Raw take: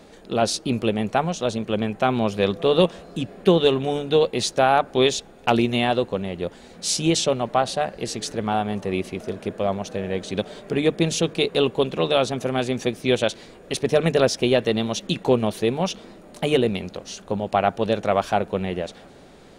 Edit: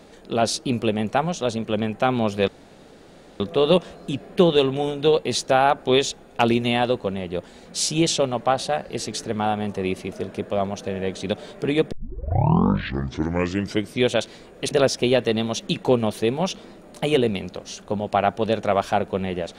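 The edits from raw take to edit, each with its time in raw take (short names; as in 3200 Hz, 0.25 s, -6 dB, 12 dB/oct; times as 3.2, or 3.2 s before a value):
2.48 insert room tone 0.92 s
11 tape start 2.14 s
13.79–14.11 cut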